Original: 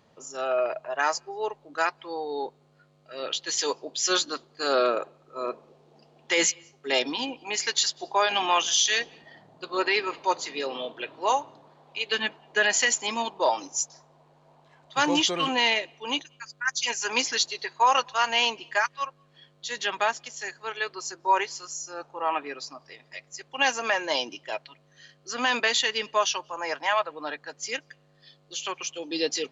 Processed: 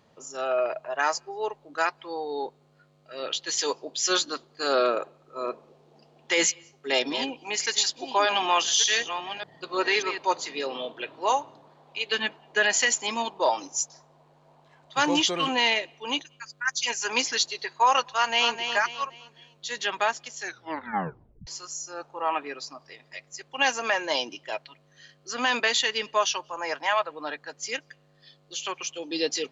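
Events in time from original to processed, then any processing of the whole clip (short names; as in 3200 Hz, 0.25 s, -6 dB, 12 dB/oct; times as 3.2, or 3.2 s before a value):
6.48–10.18 reverse delay 0.591 s, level -9.5 dB
18.13–18.65 echo throw 0.26 s, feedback 35%, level -7.5 dB
20.41 tape stop 1.06 s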